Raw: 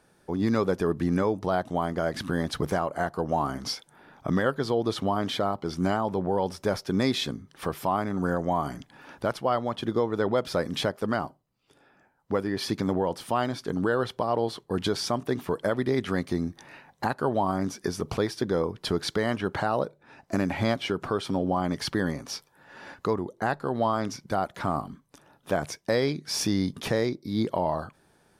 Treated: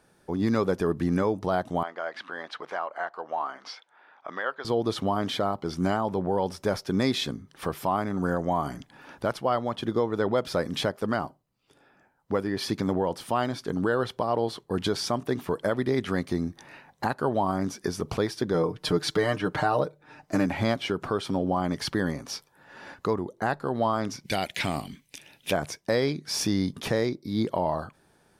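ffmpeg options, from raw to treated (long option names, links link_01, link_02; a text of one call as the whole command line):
ffmpeg -i in.wav -filter_complex "[0:a]asettb=1/sr,asplit=3[link_01][link_02][link_03];[link_01]atrim=end=1.834[link_04];[link_02]atrim=start=1.83:end=4.65,asetpts=PTS-STARTPTS,afade=type=in:duration=0.004:curve=qsin,afade=type=out:start_time=2.816:duration=0.004:curve=qsin,highpass=780,lowpass=3000[link_05];[link_03]atrim=start=4.646[link_06];[link_04][link_05]acrossfade=duration=0.004:curve1=hsin:curve2=qsin[link_07];[link_07][link_06]acrossfade=duration=0.004:curve1=qsin:curve2=hsin,asettb=1/sr,asplit=3[link_08][link_09][link_10];[link_08]atrim=end=18.544[link_11];[link_09]atrim=start=18.54:end=20.46,asetpts=PTS-STARTPTS,afade=type=in:duration=0.004:curve=qsin,afade=type=out:start_time=1.916:duration=0.004:curve=qsin,aecho=1:1:6.6:0.7,atrim=end_sample=84672[link_12];[link_10]atrim=start=20.456[link_13];[link_11][link_12]acrossfade=duration=0.004:curve1=hsin:curve2=qsin[link_14];[link_14][link_13]acrossfade=duration=0.004:curve1=qsin:curve2=hsin,asplit=3[link_15][link_16][link_17];[link_15]afade=type=out:start_time=24.24:duration=0.02[link_18];[link_16]highshelf=frequency=1700:width_type=q:width=3:gain=11,afade=type=in:start_time=24.24:duration=0.02,afade=type=out:start_time=25.51:duration=0.02[link_19];[link_17]afade=type=in:start_time=25.51:duration=0.02[link_20];[link_18][link_19][link_20]amix=inputs=3:normalize=0" out.wav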